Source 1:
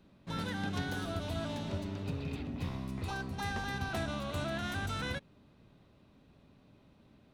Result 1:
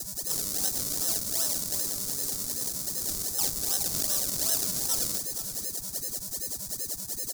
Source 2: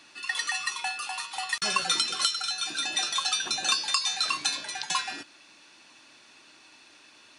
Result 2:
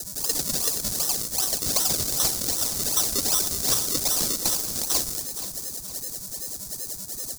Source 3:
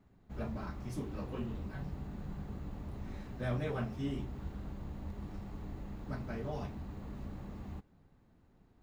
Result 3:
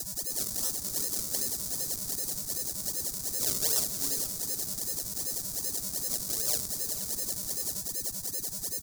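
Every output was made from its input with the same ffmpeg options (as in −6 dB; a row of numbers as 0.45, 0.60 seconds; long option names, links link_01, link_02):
-filter_complex "[0:a]highpass=61,bass=frequency=250:gain=-13,treble=frequency=4000:gain=-8,bandreject=frequency=2000:width=12,asplit=2[link_01][link_02];[link_02]acompressor=mode=upward:threshold=-41dB:ratio=2.5,volume=-1dB[link_03];[link_01][link_03]amix=inputs=2:normalize=0,aeval=exprs='val(0)+0.0141*sin(2*PI*1800*n/s)':channel_layout=same,acrusher=samples=37:mix=1:aa=0.000001:lfo=1:lforange=37:lforate=2.6,aexciter=amount=15.4:drive=8.8:freq=4600,asoftclip=type=tanh:threshold=-5dB,asplit=2[link_04][link_05];[link_05]aecho=0:1:474|948|1422|1896:0.266|0.112|0.0469|0.0197[link_06];[link_04][link_06]amix=inputs=2:normalize=0,volume=-8.5dB"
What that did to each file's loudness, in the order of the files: +10.0, +4.0, +12.5 LU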